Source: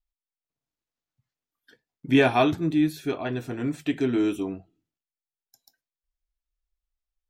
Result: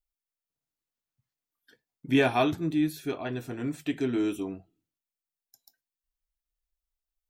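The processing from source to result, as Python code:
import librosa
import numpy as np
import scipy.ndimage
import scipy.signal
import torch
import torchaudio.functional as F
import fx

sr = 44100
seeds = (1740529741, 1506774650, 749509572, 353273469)

y = fx.high_shelf(x, sr, hz=8700.0, db=7.5)
y = y * 10.0 ** (-4.0 / 20.0)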